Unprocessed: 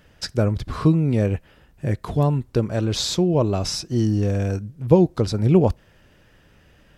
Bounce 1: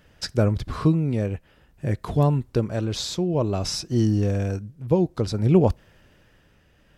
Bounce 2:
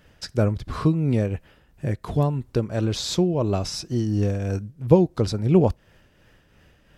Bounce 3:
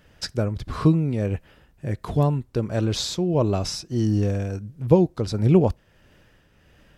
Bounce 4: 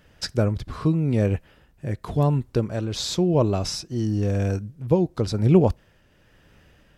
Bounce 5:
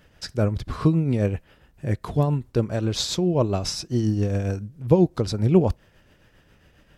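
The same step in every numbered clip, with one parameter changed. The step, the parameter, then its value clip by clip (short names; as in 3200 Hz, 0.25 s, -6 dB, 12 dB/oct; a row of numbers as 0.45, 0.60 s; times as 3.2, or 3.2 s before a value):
tremolo, rate: 0.56, 2.9, 1.5, 0.95, 7.4 Hz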